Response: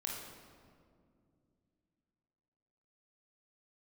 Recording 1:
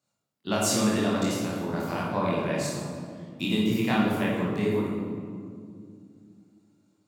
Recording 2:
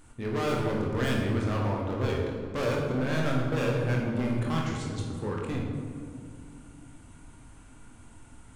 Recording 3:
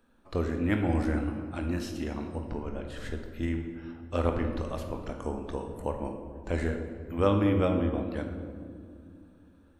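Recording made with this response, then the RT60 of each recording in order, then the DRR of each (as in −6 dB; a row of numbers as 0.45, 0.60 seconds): 2; 2.3, 2.3, 2.3 seconds; −6.5, −2.0, 4.0 decibels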